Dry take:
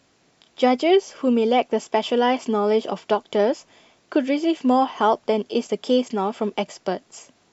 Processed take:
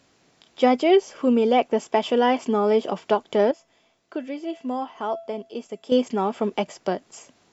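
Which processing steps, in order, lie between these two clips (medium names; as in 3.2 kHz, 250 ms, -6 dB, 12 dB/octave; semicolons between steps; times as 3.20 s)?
dynamic bell 4.6 kHz, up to -4 dB, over -45 dBFS, Q 0.96; 3.51–5.92 s: feedback comb 670 Hz, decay 0.38 s, mix 70%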